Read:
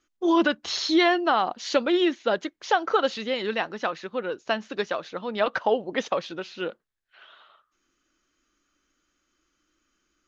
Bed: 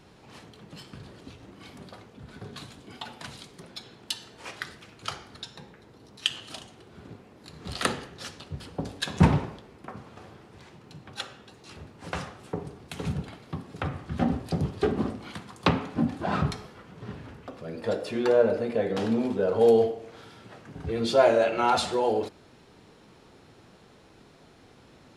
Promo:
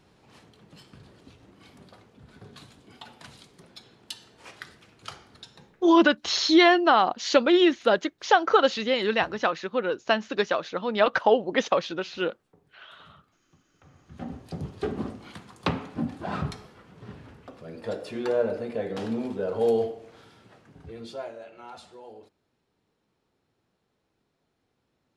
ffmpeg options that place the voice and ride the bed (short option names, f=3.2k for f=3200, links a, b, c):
-filter_complex "[0:a]adelay=5600,volume=3dB[a];[1:a]volume=18dB,afade=t=out:st=5.59:d=0.48:silence=0.0794328,afade=t=in:st=13.83:d=1.13:silence=0.0630957,afade=t=out:st=20.07:d=1.26:silence=0.141254[b];[a][b]amix=inputs=2:normalize=0"